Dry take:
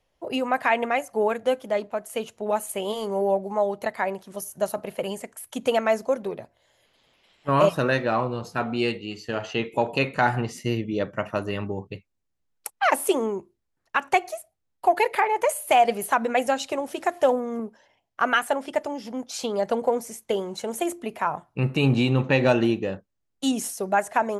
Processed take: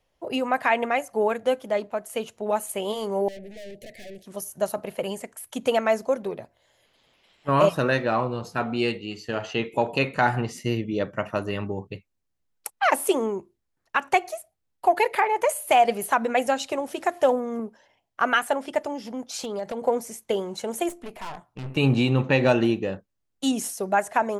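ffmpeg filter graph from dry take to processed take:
ffmpeg -i in.wav -filter_complex "[0:a]asettb=1/sr,asplit=3[link_01][link_02][link_03];[link_01]atrim=end=3.284[link_04];[link_02]atrim=start=3.28:end=4.26,asetpts=PTS-STARTPTS,afade=type=in:duration=0.004:curve=qsin,afade=type=out:start_time=0.976:duration=0.004:curve=qsin,aeval=exprs='(tanh(79.4*val(0)+0.4)-tanh(0.4))/79.4':channel_layout=same,asuperstop=centerf=1100:order=8:qfactor=0.95[link_05];[link_03]atrim=start=4.256[link_06];[link_04][link_05]acrossfade=duration=0.004:curve1=hsin:curve2=qsin[link_07];[link_07][link_06]acrossfade=duration=0.004:curve1=qsin:curve2=hsin,asettb=1/sr,asplit=3[link_08][link_09][link_10];[link_08]atrim=end=19.044[link_11];[link_09]atrim=start=19.04:end=19.84,asetpts=PTS-STARTPTS,afade=type=in:duration=0.004:curve=qsin,afade=type=out:start_time=0.796:duration=0.004:curve=qsin,acompressor=threshold=-27dB:ratio=4:attack=3.2:release=140:knee=1:detection=peak,aeval=exprs='0.075*(abs(mod(val(0)/0.075+3,4)-2)-1)':channel_layout=same[link_12];[link_10]atrim=start=19.836[link_13];[link_11][link_12]acrossfade=duration=0.004:curve1=hsin:curve2=qsin[link_14];[link_14][link_13]acrossfade=duration=0.004:curve1=qsin:curve2=hsin,asettb=1/sr,asplit=3[link_15][link_16][link_17];[link_15]atrim=end=20.894[link_18];[link_16]atrim=start=20.89:end=21.77,asetpts=PTS-STARTPTS,afade=type=in:duration=0.004:curve=qsin,afade=type=out:start_time=0.876:duration=0.004:curve=qsin,aeval=exprs='(tanh(44.7*val(0)+0.6)-tanh(0.6))/44.7':channel_layout=same,asplit=2[link_19][link_20];[link_20]adelay=16,volume=-14dB[link_21];[link_19][link_21]amix=inputs=2:normalize=0,atrim=end_sample=38808[link_22];[link_17]atrim=start=21.766[link_23];[link_18][link_22]acrossfade=duration=0.004:curve1=hsin:curve2=qsin[link_24];[link_24][link_23]acrossfade=duration=0.004:curve1=qsin:curve2=hsin" out.wav

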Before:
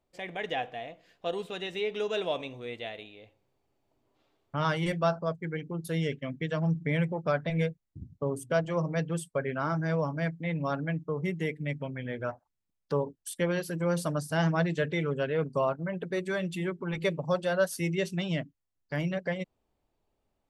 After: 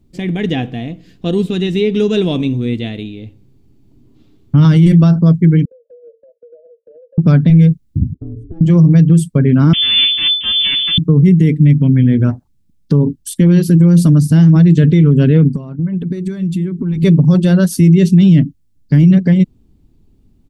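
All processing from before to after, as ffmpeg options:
ffmpeg -i in.wav -filter_complex "[0:a]asettb=1/sr,asplit=3[link_01][link_02][link_03];[link_01]atrim=end=5.654[link_04];[link_02]atrim=start=5.65:end=7.18,asetpts=PTS-STARTPTS,afade=type=in:duration=0.004:curve=qsin,afade=type=out:start_time=1.526:duration=0.004:curve=qsin,asuperpass=centerf=540:order=20:qfactor=2.9,acompressor=threshold=-50dB:ratio=5:attack=3.2:release=140:knee=1:detection=peak[link_05];[link_03]atrim=start=7.176[link_06];[link_04][link_05]acrossfade=duration=0.004:curve1=hsin:curve2=qsin[link_07];[link_07][link_06]acrossfade=duration=0.004:curve1=qsin:curve2=hsin,asettb=1/sr,asplit=3[link_08][link_09][link_10];[link_08]atrim=end=8.144[link_11];[link_09]atrim=start=8.14:end=8.61,asetpts=PTS-STARTPTS,afade=type=in:duration=0.004:curve=qsin,afade=type=out:start_time=0.466:duration=0.004:curve=qsin,bandpass=frequency=240:width_type=q:width=2.3,aeval=exprs='val(0)*sin(2*PI*160*n/s)':channel_layout=same,acompressor=threshold=-49dB:ratio=6:attack=3.2:release=140:knee=1:detection=peak[link_12];[link_10]atrim=start=8.606[link_13];[link_11][link_12]acrossfade=duration=0.004:curve1=hsin:curve2=qsin[link_14];[link_14][link_13]acrossfade=duration=0.004:curve1=qsin:curve2=hsin,asettb=1/sr,asplit=3[link_15][link_16][link_17];[link_15]atrim=end=9.734[link_18];[link_16]atrim=start=9.73:end=10.98,asetpts=PTS-STARTPTS,afade=type=in:duration=0.004:curve=qsin,afade=type=out:start_time=1.246:duration=0.004:curve=qsin,tiltshelf=frequency=1100:gain=5.5,aeval=exprs='abs(val(0))':channel_layout=same,lowpass=frequency=3000:width_type=q:width=0.5098,lowpass=frequency=3000:width_type=q:width=0.6013,lowpass=frequency=3000:width_type=q:width=0.9,lowpass=frequency=3000:width_type=q:width=2.563,afreqshift=-3500[link_19];[link_17]atrim=start=10.976[link_20];[link_18][link_19]acrossfade=duration=0.004:curve1=hsin:curve2=qsin[link_21];[link_21][link_20]acrossfade=duration=0.004:curve1=qsin:curve2=hsin,asettb=1/sr,asplit=3[link_22][link_23][link_24];[link_22]atrim=end=15.484[link_25];[link_23]atrim=start=15.48:end=17.03,asetpts=PTS-STARTPTS,afade=type=in:duration=0.004:curve=qsin,afade=type=out:start_time=1.546:duration=0.004:curve=qsin,acompressor=threshold=-41dB:ratio=10:attack=3.2:release=140:knee=1:detection=peak,equalizer=frequency=3000:width=3.6:gain=-3[link_26];[link_24]atrim=start=17.026[link_27];[link_25][link_26]acrossfade=duration=0.004:curve1=hsin:curve2=qsin[link_28];[link_28][link_27]acrossfade=duration=0.004:curve1=qsin:curve2=hsin,firequalizer=gain_entry='entry(250,0);entry(570,-25);entry(3800,-16)':delay=0.05:min_phase=1,alimiter=level_in=30.5dB:limit=-1dB:release=50:level=0:latency=1,volume=-1dB" out.wav

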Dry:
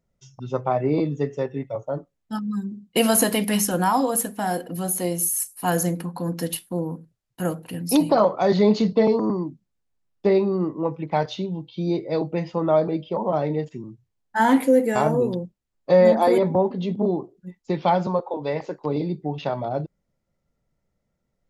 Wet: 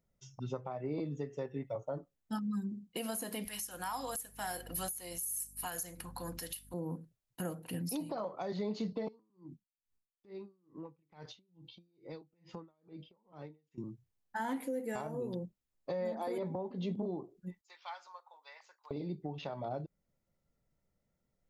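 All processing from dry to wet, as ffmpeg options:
ffmpeg -i in.wav -filter_complex "[0:a]asettb=1/sr,asplit=3[link_01][link_02][link_03];[link_01]atrim=end=3.454[link_04];[link_02]atrim=start=3.45:end=6.74,asetpts=PTS-STARTPTS,afade=type=in:duration=0.004:curve=qsin,afade=type=out:start_time=3.286:duration=0.004:curve=qsin,tiltshelf=frequency=690:gain=-9.5,aeval=exprs='val(0)+0.01*(sin(2*PI*50*n/s)+sin(2*PI*2*50*n/s)/2+sin(2*PI*3*50*n/s)/3+sin(2*PI*4*50*n/s)/4+sin(2*PI*5*50*n/s)/5)':channel_layout=same[link_05];[link_03]atrim=start=6.736[link_06];[link_04][link_05]acrossfade=duration=0.004:curve1=hsin:curve2=qsin[link_07];[link_07][link_06]acrossfade=duration=0.004:curve1=qsin:curve2=hsin,asettb=1/sr,asplit=3[link_08][link_09][link_10];[link_08]atrim=end=9.084[link_11];[link_09]atrim=start=9.08:end=13.78,asetpts=PTS-STARTPTS,afade=type=in:duration=0.004:curve=qsin,afade=type=out:start_time=4.696:duration=0.004:curve=qsin,equalizer=frequency=640:width=2.6:gain=-9.5,acompressor=threshold=-34dB:ratio=16:attack=3.2:release=140:knee=1:detection=peak,aeval=exprs='val(0)*pow(10,-33*(0.5-0.5*cos(2*PI*2.3*n/s))/20)':channel_layout=same[link_12];[link_10]atrim=start=13.776[link_13];[link_11][link_12]acrossfade=duration=0.004:curve1=hsin:curve2=qsin[link_14];[link_14][link_13]acrossfade=duration=0.004:curve1=qsin:curve2=hsin,asettb=1/sr,asplit=3[link_15][link_16][link_17];[link_15]atrim=end=17.614[link_18];[link_16]atrim=start=17.61:end=18.91,asetpts=PTS-STARTPTS,afade=type=in:duration=0.004:curve=qsin,afade=type=out:start_time=1.296:duration=0.004:curve=qsin,highpass=frequency=1200:width=0.5412,highpass=frequency=1200:width=1.3066,equalizer=frequency=2500:width=0.31:gain=-11[link_19];[link_17]atrim=start=18.906[link_20];[link_18][link_19]acrossfade=duration=0.004:curve1=hsin:curve2=qsin[link_21];[link_21][link_20]acrossfade=duration=0.004:curve1=qsin:curve2=hsin,highshelf=frequency=11000:gain=7,acompressor=threshold=-27dB:ratio=3,alimiter=limit=-22dB:level=0:latency=1:release=401,volume=-6dB" out.wav

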